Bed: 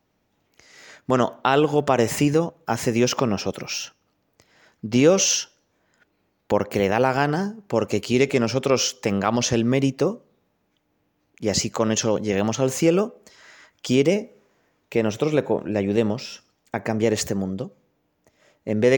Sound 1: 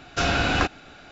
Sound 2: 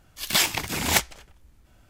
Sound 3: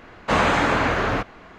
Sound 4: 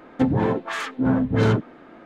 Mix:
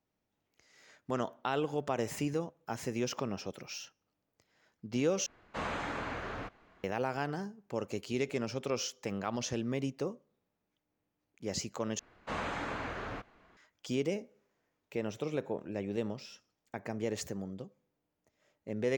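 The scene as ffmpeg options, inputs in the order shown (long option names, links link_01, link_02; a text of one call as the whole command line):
ffmpeg -i bed.wav -i cue0.wav -i cue1.wav -i cue2.wav -filter_complex "[3:a]asplit=2[link_01][link_02];[0:a]volume=-14.5dB,asplit=3[link_03][link_04][link_05];[link_03]atrim=end=5.264[link_06];[link_01]atrim=end=1.58,asetpts=PTS-STARTPTS,volume=-18dB[link_07];[link_04]atrim=start=6.836:end=11.994[link_08];[link_02]atrim=end=1.58,asetpts=PTS-STARTPTS,volume=-18dB[link_09];[link_05]atrim=start=13.566[link_10];[link_06][link_07]acrossfade=duration=0.004:curve1=hsin:curve2=hsin[link_11];[link_11][link_08]acrossfade=duration=0.004:curve1=hsin:curve2=hsin[link_12];[link_12][link_09]acrossfade=duration=0.004:curve1=hsin:curve2=hsin[link_13];[link_13][link_10]acrossfade=duration=0.004:curve1=hsin:curve2=hsin" out.wav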